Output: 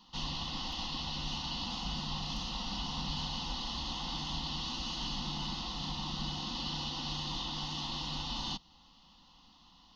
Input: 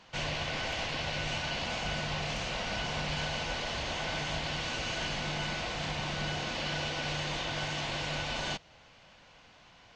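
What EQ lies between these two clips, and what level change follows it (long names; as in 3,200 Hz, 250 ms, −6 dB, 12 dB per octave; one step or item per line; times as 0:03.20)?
phaser with its sweep stopped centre 420 Hz, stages 6
phaser with its sweep stopped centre 2,300 Hz, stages 6
+3.5 dB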